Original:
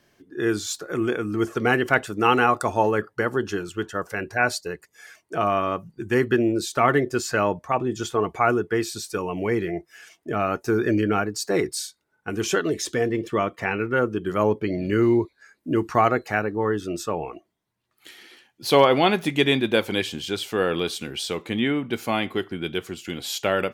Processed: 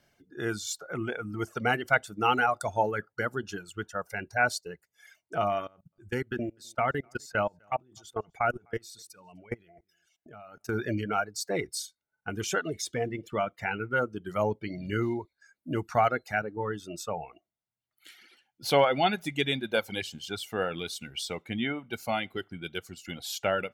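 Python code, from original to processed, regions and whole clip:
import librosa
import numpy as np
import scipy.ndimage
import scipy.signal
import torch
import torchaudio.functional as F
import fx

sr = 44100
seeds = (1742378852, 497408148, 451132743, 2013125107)

y = fx.chain(x, sr, fx.level_steps(step_db=21),
    fx.echo_single(ms=253, db=-23.0), at=(5.67, 10.75))
y = fx.dereverb_blind(y, sr, rt60_s=1.8)
y = y + 0.43 * np.pad(y, (int(1.4 * sr / 1000.0), 0))[:len(y)]
y = y * librosa.db_to_amplitude(-5.5)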